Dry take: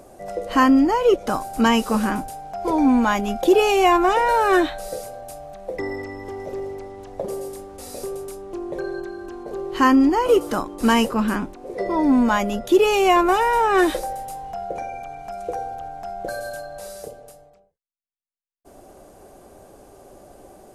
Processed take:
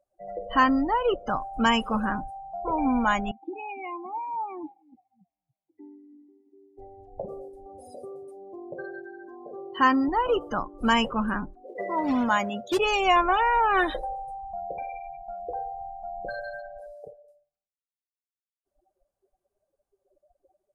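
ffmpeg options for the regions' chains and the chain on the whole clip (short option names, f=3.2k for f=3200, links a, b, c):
-filter_complex "[0:a]asettb=1/sr,asplit=3[a][b][c];[a]atrim=end=3.314[d];[b]atrim=start=3.31:end=6.78,asetpts=PTS-STARTPTS,afade=t=in:d=0.004:c=qsin,afade=t=out:st=3.466:d=0.004:c=qsin,asplit=3[e][f][g];[e]bandpass=f=300:t=q:w=8,volume=0dB[h];[f]bandpass=f=870:t=q:w=8,volume=-6dB[i];[g]bandpass=f=2.24k:t=q:w=8,volume=-9dB[j];[h][i][j]amix=inputs=3:normalize=0,asplit=6[k][l][m][n][o][p];[l]adelay=285,afreqshift=-59,volume=-19dB[q];[m]adelay=570,afreqshift=-118,volume=-23.9dB[r];[n]adelay=855,afreqshift=-177,volume=-28.8dB[s];[o]adelay=1140,afreqshift=-236,volume=-33.6dB[t];[p]adelay=1425,afreqshift=-295,volume=-38.5dB[u];[k][q][r][s][t][u]amix=inputs=6:normalize=0,atrim=end_sample=153027[v];[c]atrim=start=6.776[w];[d][v]acrossfade=d=0.004:c1=hsin:c2=qsin[x];[x][w]acrossfade=d=0.004:c1=qsin:c2=hsin,asettb=1/sr,asplit=3[y][z][aa];[y]atrim=end=7.664[ab];[z]atrim=start=7.66:end=10.08,asetpts=PTS-STARTPTS,afade=t=in:d=0.004:c=qsin,afade=t=out:st=2.416:d=0.004:c=qsin,highpass=91,acompressor=mode=upward:threshold=-28dB:ratio=2.5:attack=3.2:release=140:knee=2.83:detection=peak[ac];[aa]atrim=start=10.076[ad];[ab][ac]acrossfade=d=0.004:c1=hsin:c2=qsin[ae];[ae][ad]acrossfade=d=0.004:c1=qsin:c2=hsin,asettb=1/sr,asplit=3[af][ag][ah];[af]atrim=end=11.674[ai];[ag]atrim=start=11.67:end=12.79,asetpts=PTS-STARTPTS,afade=t=in:d=0.004:c=qsin,afade=t=out:st=1.116:d=0.004:c=qsin,highpass=160,acrusher=bits=3:mode=log:mix=0:aa=0.000001[aj];[ah]atrim=start=12.786[ak];[ai][aj]acrossfade=d=0.004:c1=hsin:c2=qsin[al];[al][ak]acrossfade=d=0.004:c1=qsin:c2=hsin,afftdn=nr=36:nf=-30,equalizer=f=340:w=0.96:g=-10,volume=-1dB"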